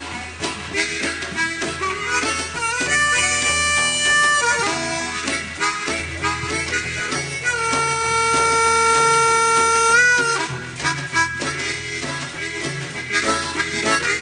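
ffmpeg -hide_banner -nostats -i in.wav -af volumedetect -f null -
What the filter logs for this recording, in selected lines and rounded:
mean_volume: -20.1 dB
max_volume: -4.5 dB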